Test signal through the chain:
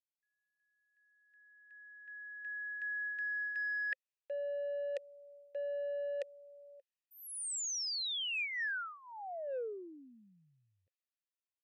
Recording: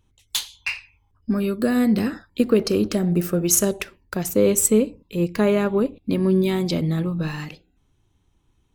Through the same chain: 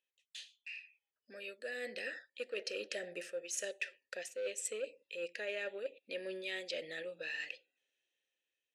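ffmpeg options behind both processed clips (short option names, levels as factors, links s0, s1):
-filter_complex "[0:a]asplit=3[s0][s1][s2];[s0]bandpass=f=530:t=q:w=8,volume=1[s3];[s1]bandpass=f=1840:t=q:w=8,volume=0.501[s4];[s2]bandpass=f=2480:t=q:w=8,volume=0.355[s5];[s3][s4][s5]amix=inputs=3:normalize=0,asplit=2[s6][s7];[s7]asoftclip=type=tanh:threshold=0.0596,volume=0.355[s8];[s6][s8]amix=inputs=2:normalize=0,aderivative,areverse,acompressor=threshold=0.00224:ratio=6,areverse,lowshelf=f=180:g=-6,dynaudnorm=f=600:g=5:m=3.35,lowpass=f=9400:w=0.5412,lowpass=f=9400:w=1.3066,volume=2"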